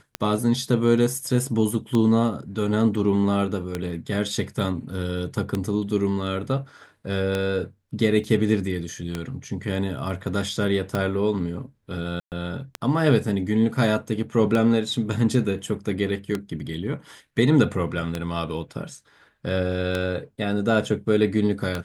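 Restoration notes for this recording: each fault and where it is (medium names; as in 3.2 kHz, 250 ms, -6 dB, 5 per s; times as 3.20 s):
tick 33 1/3 rpm -11 dBFS
8.24 s: dropout 3 ms
12.20–12.32 s: dropout 118 ms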